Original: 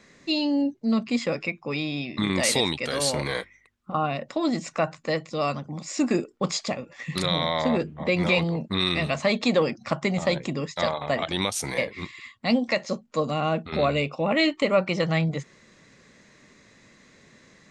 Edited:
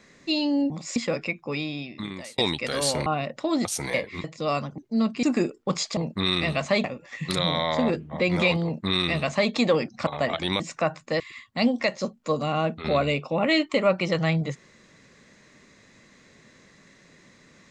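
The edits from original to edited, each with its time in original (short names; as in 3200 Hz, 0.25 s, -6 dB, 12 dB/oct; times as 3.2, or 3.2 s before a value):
0.7–1.15 swap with 5.71–5.97
1.68–2.57 fade out
3.25–3.98 cut
4.57–5.17 swap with 11.49–12.08
8.51–9.38 copy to 6.71
9.94–10.96 cut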